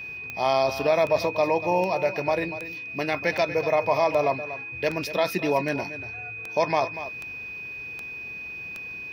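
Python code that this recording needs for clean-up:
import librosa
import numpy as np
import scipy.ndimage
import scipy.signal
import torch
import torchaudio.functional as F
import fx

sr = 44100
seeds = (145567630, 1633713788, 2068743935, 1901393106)

y = fx.fix_declick_ar(x, sr, threshold=10.0)
y = fx.notch(y, sr, hz=2500.0, q=30.0)
y = fx.fix_echo_inverse(y, sr, delay_ms=239, level_db=-13.0)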